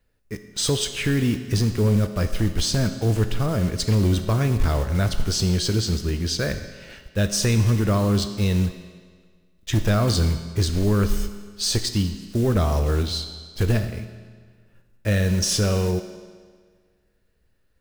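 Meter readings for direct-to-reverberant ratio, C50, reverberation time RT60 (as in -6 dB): 8.0 dB, 9.5 dB, 1.7 s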